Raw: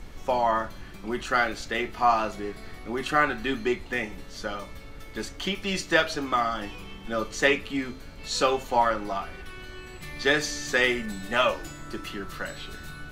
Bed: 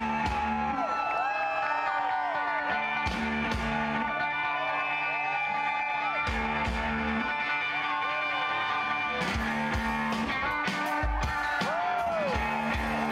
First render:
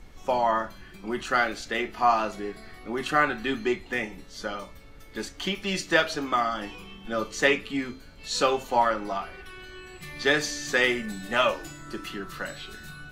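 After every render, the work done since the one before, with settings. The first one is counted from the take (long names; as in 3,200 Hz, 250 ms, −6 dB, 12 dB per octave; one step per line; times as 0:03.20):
noise reduction from a noise print 6 dB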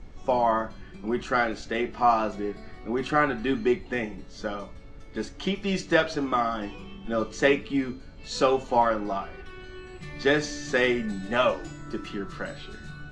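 low-pass filter 7,800 Hz 24 dB per octave
tilt shelving filter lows +4.5 dB, about 910 Hz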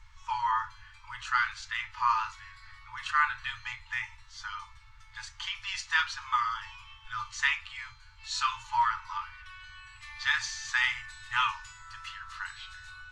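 brick-wall band-stop 120–860 Hz
low-shelf EQ 250 Hz −10.5 dB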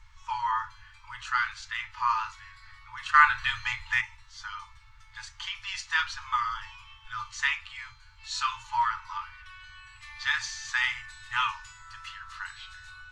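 0:03.14–0:04.01: clip gain +7.5 dB
0:06.02–0:06.66: low-shelf EQ 78 Hz +8 dB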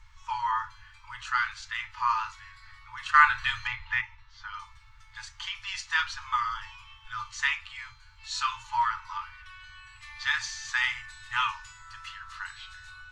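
0:03.67–0:04.54: high-frequency loss of the air 190 metres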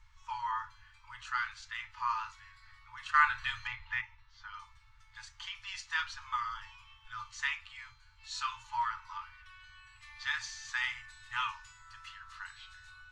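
level −7 dB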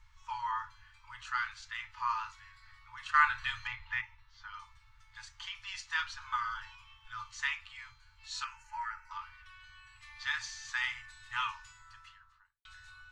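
0:06.20–0:06.75: hollow resonant body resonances 660/1,500/4,000 Hz, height 13 dB
0:08.44–0:09.11: phaser with its sweep stopped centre 720 Hz, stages 8
0:11.70–0:12.65: fade out and dull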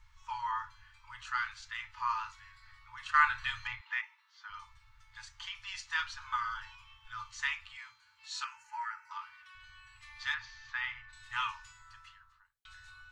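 0:03.81–0:04.50: Butterworth high-pass 890 Hz
0:07.77–0:09.55: high-pass filter 260 Hz
0:10.34–0:11.13: high-frequency loss of the air 260 metres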